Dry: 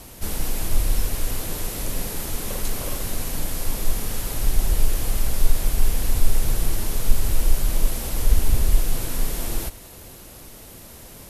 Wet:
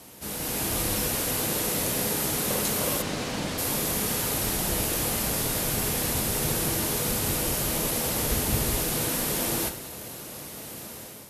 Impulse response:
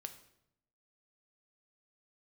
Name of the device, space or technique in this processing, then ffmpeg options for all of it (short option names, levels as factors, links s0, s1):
far laptop microphone: -filter_complex "[1:a]atrim=start_sample=2205[s0];[0:a][s0]afir=irnorm=-1:irlink=0,highpass=130,dynaudnorm=f=190:g=5:m=2.66,asplit=3[s1][s2][s3];[s1]afade=t=out:st=3.01:d=0.02[s4];[s2]lowpass=5300,afade=t=in:st=3.01:d=0.02,afade=t=out:st=3.57:d=0.02[s5];[s3]afade=t=in:st=3.57:d=0.02[s6];[s4][s5][s6]amix=inputs=3:normalize=0"